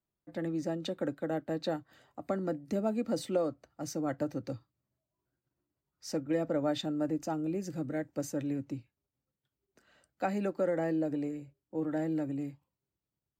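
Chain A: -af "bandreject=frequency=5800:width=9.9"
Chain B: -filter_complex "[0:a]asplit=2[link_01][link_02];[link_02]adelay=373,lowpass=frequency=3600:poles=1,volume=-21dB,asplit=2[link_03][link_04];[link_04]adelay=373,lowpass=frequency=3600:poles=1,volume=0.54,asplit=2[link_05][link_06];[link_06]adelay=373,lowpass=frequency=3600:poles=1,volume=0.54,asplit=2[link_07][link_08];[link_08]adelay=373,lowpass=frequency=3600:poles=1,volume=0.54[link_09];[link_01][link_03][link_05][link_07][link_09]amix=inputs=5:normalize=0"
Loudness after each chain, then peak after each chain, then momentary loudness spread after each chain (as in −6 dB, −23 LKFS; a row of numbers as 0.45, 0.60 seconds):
−35.0, −35.0 LKFS; −17.5, −17.5 dBFS; 11, 11 LU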